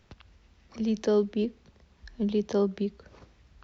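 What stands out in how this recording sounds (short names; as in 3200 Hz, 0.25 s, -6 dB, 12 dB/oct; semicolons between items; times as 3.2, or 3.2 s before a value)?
noise floor -62 dBFS; spectral tilt -4.5 dB/oct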